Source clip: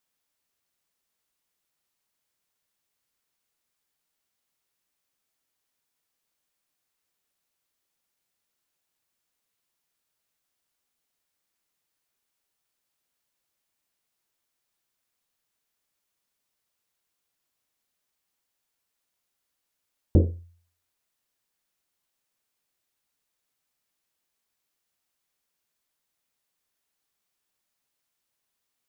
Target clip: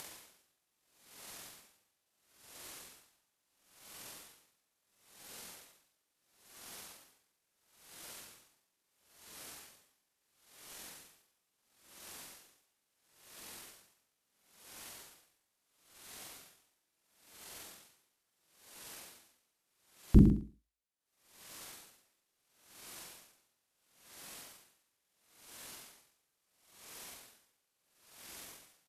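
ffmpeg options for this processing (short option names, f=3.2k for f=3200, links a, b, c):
-filter_complex "[0:a]tiltshelf=f=740:g=3.5,acompressor=mode=upward:threshold=-31dB:ratio=2.5,asetrate=27781,aresample=44100,atempo=1.5874,lowshelf=f=170:g=-10,asplit=2[a][b];[b]adelay=45,volume=-3dB[c];[a][c]amix=inputs=2:normalize=0,aecho=1:1:110|220|330:0.316|0.0696|0.0153,aeval=exprs='val(0)*pow(10,-33*(0.5-0.5*cos(2*PI*0.74*n/s))/20)':c=same,volume=4dB"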